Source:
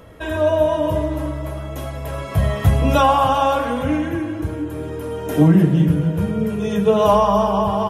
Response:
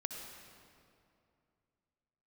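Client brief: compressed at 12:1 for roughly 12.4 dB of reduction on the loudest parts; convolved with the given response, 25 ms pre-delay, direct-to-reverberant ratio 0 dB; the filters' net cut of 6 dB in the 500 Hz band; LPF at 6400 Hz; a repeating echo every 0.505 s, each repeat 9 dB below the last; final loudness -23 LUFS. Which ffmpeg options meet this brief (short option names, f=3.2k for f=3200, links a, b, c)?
-filter_complex "[0:a]lowpass=6.4k,equalizer=f=500:t=o:g=-8,acompressor=threshold=-22dB:ratio=12,aecho=1:1:505|1010|1515|2020:0.355|0.124|0.0435|0.0152,asplit=2[a][b];[1:a]atrim=start_sample=2205,adelay=25[c];[b][c]afir=irnorm=-1:irlink=0,volume=0dB[d];[a][d]amix=inputs=2:normalize=0,volume=1dB"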